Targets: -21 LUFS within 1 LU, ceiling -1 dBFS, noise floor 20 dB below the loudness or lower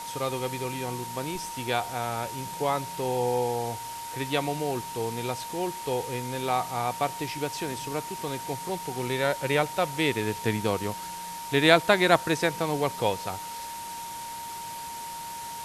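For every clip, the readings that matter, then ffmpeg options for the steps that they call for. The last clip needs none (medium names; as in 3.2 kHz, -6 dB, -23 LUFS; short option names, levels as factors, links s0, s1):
steady tone 930 Hz; tone level -36 dBFS; noise floor -38 dBFS; noise floor target -49 dBFS; loudness -28.5 LUFS; peak level -3.5 dBFS; loudness target -21.0 LUFS
-> -af "bandreject=f=930:w=30"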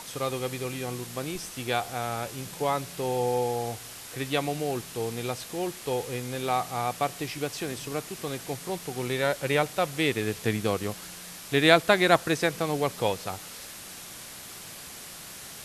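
steady tone not found; noise floor -43 dBFS; noise floor target -49 dBFS
-> -af "afftdn=nr=6:nf=-43"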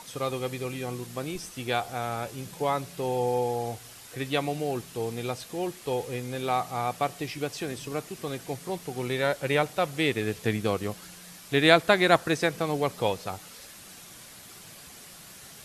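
noise floor -48 dBFS; noise floor target -49 dBFS
-> -af "afftdn=nr=6:nf=-48"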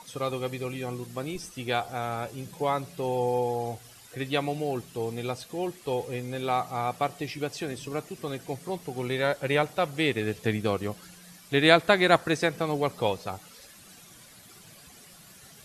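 noise floor -52 dBFS; loudness -28.5 LUFS; peak level -4.0 dBFS; loudness target -21.0 LUFS
-> -af "volume=2.37,alimiter=limit=0.891:level=0:latency=1"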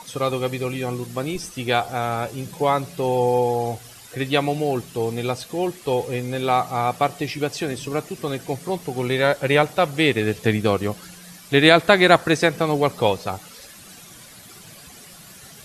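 loudness -21.5 LUFS; peak level -1.0 dBFS; noise floor -44 dBFS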